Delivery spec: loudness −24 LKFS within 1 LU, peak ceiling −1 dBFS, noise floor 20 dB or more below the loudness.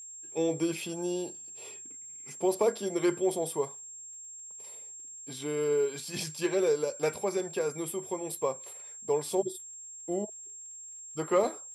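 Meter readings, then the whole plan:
crackle rate 29 per second; interfering tone 7,500 Hz; level of the tone −43 dBFS; integrated loudness −32.0 LKFS; sample peak −14.5 dBFS; target loudness −24.0 LKFS
→ click removal
notch filter 7,500 Hz, Q 30
level +8 dB

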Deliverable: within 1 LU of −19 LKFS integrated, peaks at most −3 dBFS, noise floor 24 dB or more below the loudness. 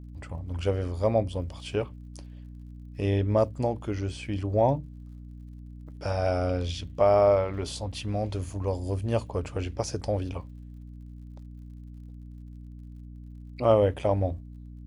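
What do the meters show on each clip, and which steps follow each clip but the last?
crackle rate 46 per second; mains hum 60 Hz; hum harmonics up to 300 Hz; level of the hum −40 dBFS; integrated loudness −28.0 LKFS; sample peak −8.5 dBFS; target loudness −19.0 LKFS
→ click removal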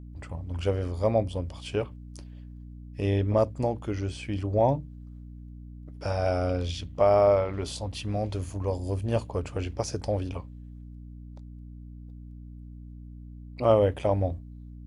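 crackle rate 0 per second; mains hum 60 Hz; hum harmonics up to 300 Hz; level of the hum −40 dBFS
→ hum removal 60 Hz, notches 5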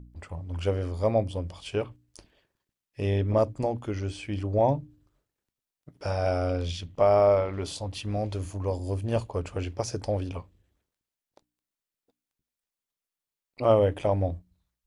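mains hum none found; integrated loudness −28.0 LKFS; sample peak −8.5 dBFS; target loudness −19.0 LKFS
→ level +9 dB
brickwall limiter −3 dBFS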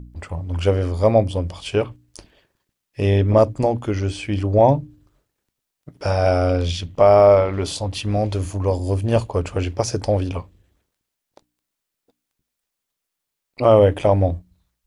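integrated loudness −19.0 LKFS; sample peak −3.0 dBFS; background noise floor −81 dBFS

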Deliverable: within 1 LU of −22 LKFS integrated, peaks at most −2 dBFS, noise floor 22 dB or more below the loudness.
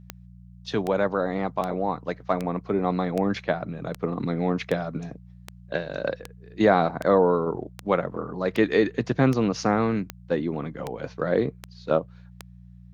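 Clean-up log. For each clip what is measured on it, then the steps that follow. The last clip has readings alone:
number of clicks 17; mains hum 60 Hz; hum harmonics up to 180 Hz; level of the hum −42 dBFS; integrated loudness −25.5 LKFS; sample peak −6.5 dBFS; target loudness −22.0 LKFS
→ click removal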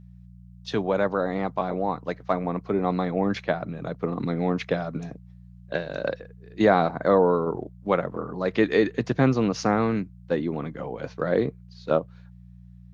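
number of clicks 0; mains hum 60 Hz; hum harmonics up to 180 Hz; level of the hum −42 dBFS
→ hum removal 60 Hz, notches 3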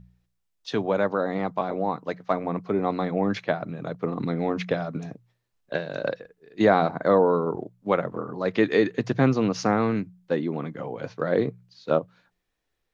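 mains hum none found; integrated loudness −26.0 LKFS; sample peak −6.5 dBFS; target loudness −22.0 LKFS
→ level +4 dB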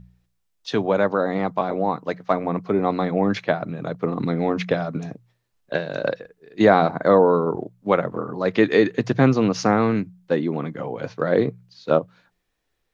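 integrated loudness −22.0 LKFS; sample peak −2.5 dBFS; background noise floor −73 dBFS

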